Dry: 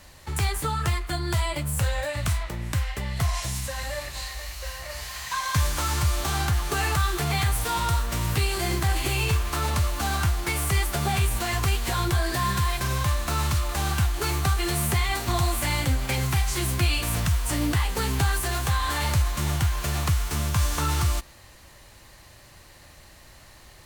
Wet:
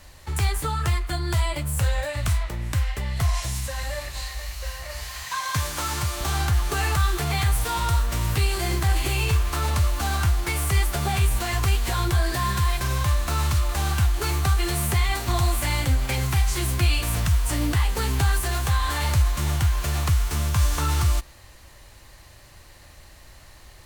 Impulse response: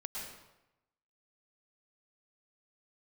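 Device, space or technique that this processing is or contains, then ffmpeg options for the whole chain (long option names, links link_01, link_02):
low shelf boost with a cut just above: -filter_complex "[0:a]lowshelf=frequency=91:gain=6,equalizer=frequency=180:width_type=o:width=1.1:gain=-3,asettb=1/sr,asplit=3[link_01][link_02][link_03];[link_01]atrim=end=5.234[link_04];[link_02]atrim=start=5.23:end=6.21,asetpts=PTS-STARTPTS,afade=type=in:duration=0.004:curve=qsin,afade=type=out:start_time=0.976:duration=0.004:curve=qsin,highpass=110[link_05];[link_03]atrim=start=6.206[link_06];[link_04][link_05]acrossfade=duration=0.004:curve1=hsin:curve2=qsin[link_07];[link_07][link_06]acrossfade=duration=0.004:curve1=qsin:curve2=hsin"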